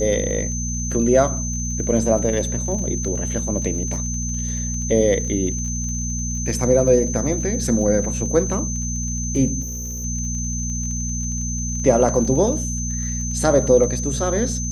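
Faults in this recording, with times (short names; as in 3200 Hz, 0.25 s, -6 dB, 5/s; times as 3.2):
crackle 27/s -30 dBFS
hum 60 Hz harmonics 4 -26 dBFS
tone 6200 Hz -27 dBFS
9.61–10.05 clipped -26 dBFS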